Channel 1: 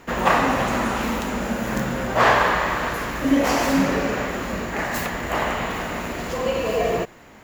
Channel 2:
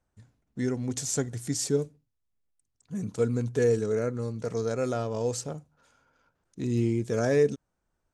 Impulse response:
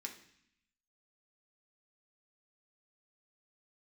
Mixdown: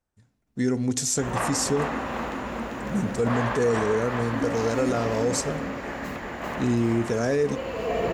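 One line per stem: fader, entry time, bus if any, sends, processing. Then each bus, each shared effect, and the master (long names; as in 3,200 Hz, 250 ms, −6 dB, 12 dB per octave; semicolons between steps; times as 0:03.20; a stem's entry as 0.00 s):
−1.0 dB, 1.10 s, no send, echo send −11 dB, low-pass filter 3,300 Hz 6 dB per octave; automatic ducking −9 dB, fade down 1.70 s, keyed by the second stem
−5.5 dB, 0.00 s, send −8.5 dB, no echo send, automatic gain control gain up to 11 dB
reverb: on, RT60 0.65 s, pre-delay 3 ms
echo: repeating echo 394 ms, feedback 52%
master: brickwall limiter −14.5 dBFS, peak gain reduction 7 dB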